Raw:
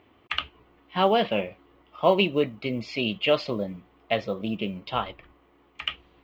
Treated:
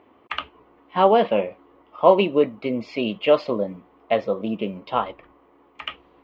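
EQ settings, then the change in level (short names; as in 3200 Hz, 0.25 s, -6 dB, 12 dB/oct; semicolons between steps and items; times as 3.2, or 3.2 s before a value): graphic EQ 250/500/1000/2000 Hz +8/+9/+10/+3 dB; -5.5 dB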